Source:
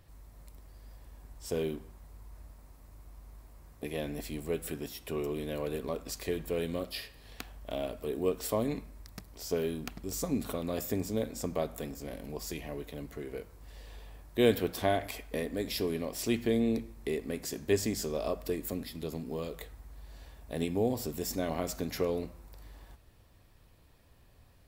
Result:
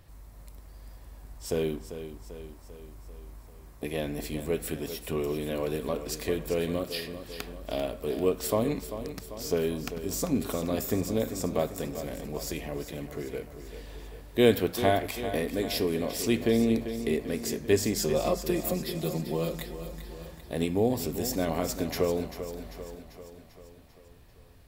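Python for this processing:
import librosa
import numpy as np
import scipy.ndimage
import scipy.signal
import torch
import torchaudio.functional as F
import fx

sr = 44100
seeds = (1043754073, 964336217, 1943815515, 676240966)

y = fx.comb(x, sr, ms=5.7, depth=0.92, at=(17.95, 20.14))
y = fx.echo_feedback(y, sr, ms=393, feedback_pct=57, wet_db=-11)
y = y * librosa.db_to_amplitude(4.0)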